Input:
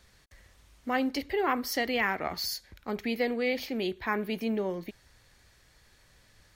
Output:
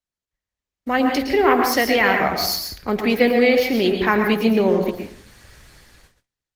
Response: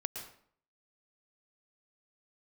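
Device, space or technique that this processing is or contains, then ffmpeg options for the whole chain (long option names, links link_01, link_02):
speakerphone in a meeting room: -filter_complex "[1:a]atrim=start_sample=2205[link_01];[0:a][link_01]afir=irnorm=-1:irlink=0,dynaudnorm=framelen=230:gausssize=7:maxgain=16dB,agate=range=-34dB:threshold=-47dB:ratio=16:detection=peak" -ar 48000 -c:a libopus -b:a 20k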